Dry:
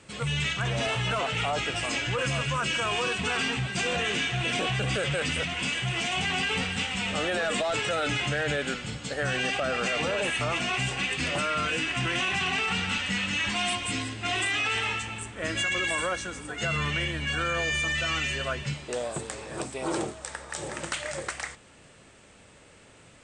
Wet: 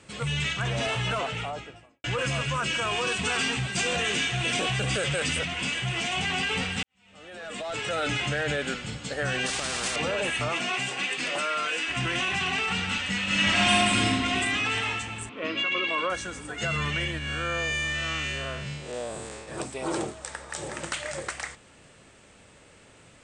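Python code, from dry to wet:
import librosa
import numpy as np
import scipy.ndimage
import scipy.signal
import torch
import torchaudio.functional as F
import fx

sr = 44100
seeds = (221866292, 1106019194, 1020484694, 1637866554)

y = fx.studio_fade_out(x, sr, start_s=1.07, length_s=0.97)
y = fx.high_shelf(y, sr, hz=5700.0, db=8.0, at=(3.07, 5.39))
y = fx.spectral_comp(y, sr, ratio=4.0, at=(9.46, 9.96))
y = fx.highpass(y, sr, hz=fx.line((10.48, 170.0), (11.87, 480.0)), slope=12, at=(10.48, 11.87), fade=0.02)
y = fx.reverb_throw(y, sr, start_s=13.23, length_s=0.84, rt60_s=2.5, drr_db=-6.5)
y = fx.cabinet(y, sr, low_hz=230.0, low_slope=12, high_hz=4200.0, hz=(260.0, 450.0, 790.0, 1100.0, 1700.0, 2600.0), db=(7, 4, -5, 7, -9, 5), at=(15.29, 16.1))
y = fx.spec_blur(y, sr, span_ms=146.0, at=(17.18, 19.48))
y = fx.edit(y, sr, fx.fade_in_span(start_s=6.83, length_s=1.18, curve='qua'), tone=tone)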